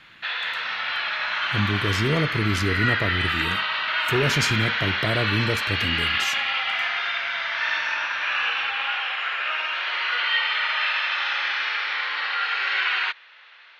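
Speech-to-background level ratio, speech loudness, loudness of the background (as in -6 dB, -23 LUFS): -3.5 dB, -27.0 LUFS, -23.5 LUFS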